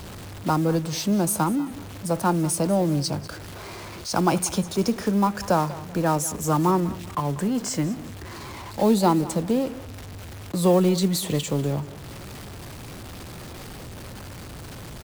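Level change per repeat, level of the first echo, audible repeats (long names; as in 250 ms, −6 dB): −10.5 dB, −17.5 dB, 2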